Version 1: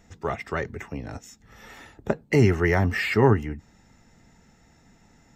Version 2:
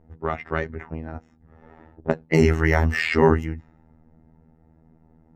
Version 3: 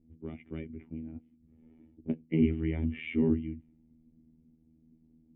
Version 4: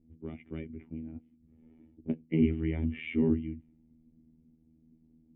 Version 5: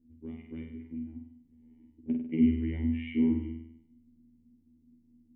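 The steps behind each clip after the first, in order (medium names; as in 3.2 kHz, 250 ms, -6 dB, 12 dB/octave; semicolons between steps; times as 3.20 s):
robot voice 80.1 Hz; level-controlled noise filter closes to 640 Hz, open at -21 dBFS; trim +4.5 dB
cascade formant filter i
no audible change
graphic EQ with 31 bands 160 Hz -6 dB, 250 Hz +9 dB, 630 Hz -7 dB, 1.25 kHz -10 dB; on a send: flutter echo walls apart 8.4 m, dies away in 0.73 s; on the sum: trim -5 dB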